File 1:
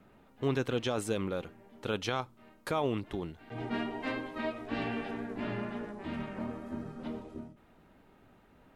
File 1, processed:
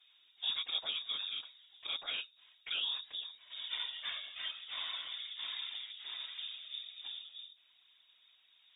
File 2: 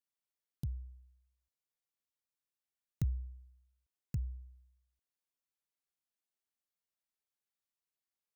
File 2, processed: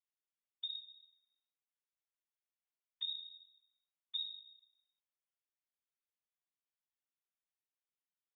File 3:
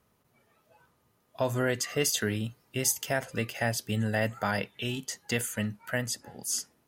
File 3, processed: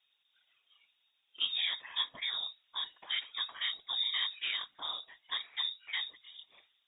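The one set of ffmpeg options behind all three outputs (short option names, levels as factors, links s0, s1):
-filter_complex "[0:a]acrossover=split=2600[s0][s1];[s1]acompressor=threshold=0.0112:ratio=4:attack=1:release=60[s2];[s0][s2]amix=inputs=2:normalize=0,afftfilt=real='hypot(re,im)*cos(2*PI*random(0))':imag='hypot(re,im)*sin(2*PI*random(1))':win_size=512:overlap=0.75,lowpass=f=3200:t=q:w=0.5098,lowpass=f=3200:t=q:w=0.6013,lowpass=f=3200:t=q:w=0.9,lowpass=f=3200:t=q:w=2.563,afreqshift=-3800"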